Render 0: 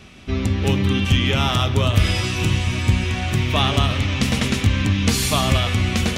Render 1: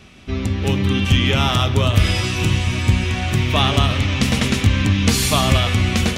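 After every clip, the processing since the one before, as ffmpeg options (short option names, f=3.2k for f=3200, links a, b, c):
-af "dynaudnorm=f=610:g=3:m=11.5dB,volume=-1dB"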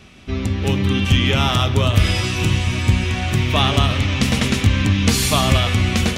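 -af anull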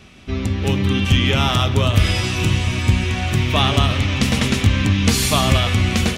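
-af "aecho=1:1:832:0.0891"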